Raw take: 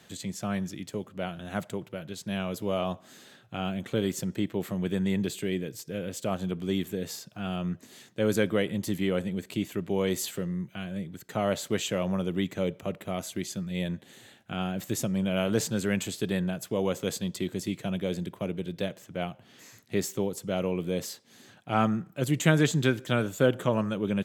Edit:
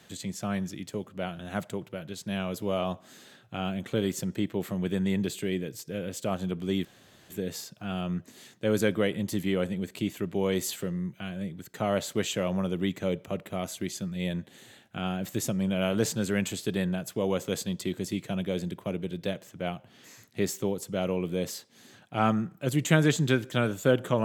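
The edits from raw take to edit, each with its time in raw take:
6.85 insert room tone 0.45 s

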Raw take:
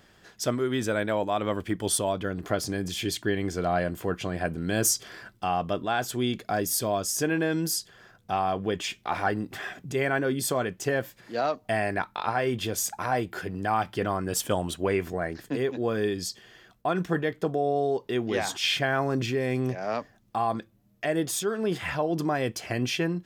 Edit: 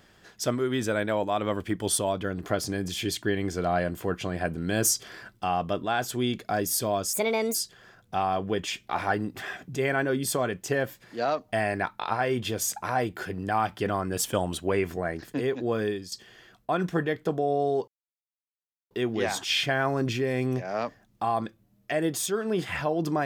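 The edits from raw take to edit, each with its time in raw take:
7.13–7.71 speed 139%
15.97–16.28 fade out, to -12.5 dB
18.04 insert silence 1.03 s

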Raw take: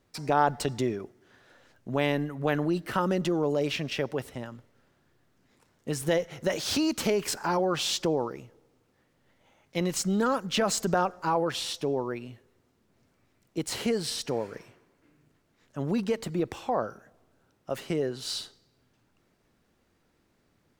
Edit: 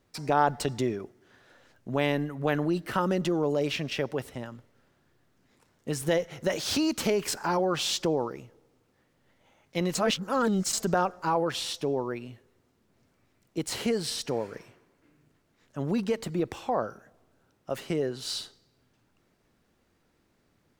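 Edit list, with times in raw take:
9.95–10.73 reverse

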